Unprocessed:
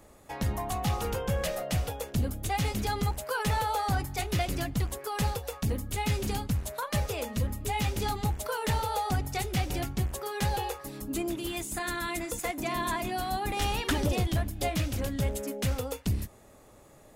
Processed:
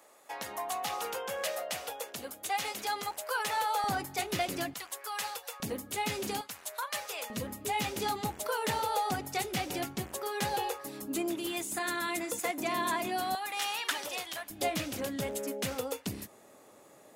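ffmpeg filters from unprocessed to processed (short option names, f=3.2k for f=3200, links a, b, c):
-af "asetnsamples=n=441:p=0,asendcmd='3.84 highpass f 240;4.74 highpass f 930;5.6 highpass f 270;6.41 highpass f 860;7.3 highpass f 230;13.35 highpass f 930;14.5 highpass f 240',highpass=580"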